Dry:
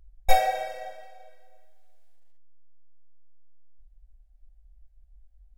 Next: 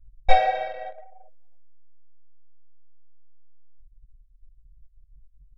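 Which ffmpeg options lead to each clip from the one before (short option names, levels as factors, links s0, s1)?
-af "lowpass=f=4000:w=0.5412,lowpass=f=4000:w=1.3066,anlmdn=0.1,volume=1.41"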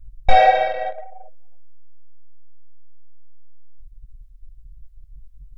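-af "areverse,acompressor=mode=upward:threshold=0.00501:ratio=2.5,areverse,asoftclip=type=tanh:threshold=0.668,alimiter=level_in=3.55:limit=0.891:release=50:level=0:latency=1,volume=0.891"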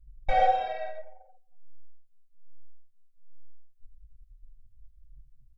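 -filter_complex "[0:a]aecho=1:1:88:0.422,asplit=2[s0][s1];[s1]adelay=2.6,afreqshift=-1.2[s2];[s0][s2]amix=inputs=2:normalize=1,volume=0.398"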